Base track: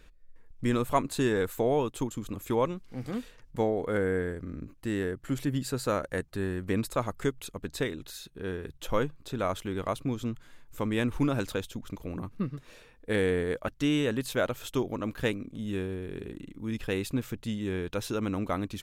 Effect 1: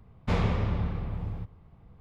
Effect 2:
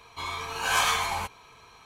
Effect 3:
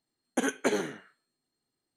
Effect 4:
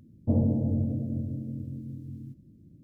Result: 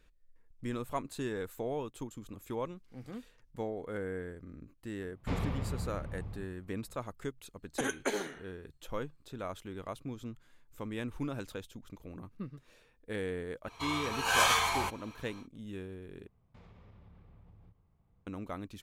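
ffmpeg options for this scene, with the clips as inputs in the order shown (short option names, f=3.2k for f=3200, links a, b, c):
-filter_complex "[1:a]asplit=2[a][b];[0:a]volume=-10dB[c];[3:a]lowshelf=f=330:g=-7[d];[b]acompressor=threshold=-38dB:ratio=6:attack=3.2:release=140:knee=1:detection=peak[e];[c]asplit=2[f][g];[f]atrim=end=16.274[h];[e]atrim=end=2,asetpts=PTS-STARTPTS,volume=-16dB[i];[g]atrim=start=18.266[j];[a]atrim=end=2,asetpts=PTS-STARTPTS,volume=-8.5dB,afade=t=in:d=0.004:c=hsin,afade=t=out:st=1.996:d=0.004:c=hsin,adelay=4990[k];[d]atrim=end=1.96,asetpts=PTS-STARTPTS,volume=-3.5dB,afade=t=in:d=0.004:c=hsin,afade=t=out:st=1.956:d=0.004:c=hsin,adelay=7410[l];[2:a]atrim=end=1.85,asetpts=PTS-STARTPTS,volume=-2dB,afade=t=in:d=0.1,afade=t=out:st=1.75:d=0.1,adelay=13630[m];[h][i]acrossfade=d=0.004:c1=hsin:c2=hsin[n];[n][j]acrossfade=d=0.004:c1=hsin:c2=hsin[o];[o][k][l][m]amix=inputs=4:normalize=0"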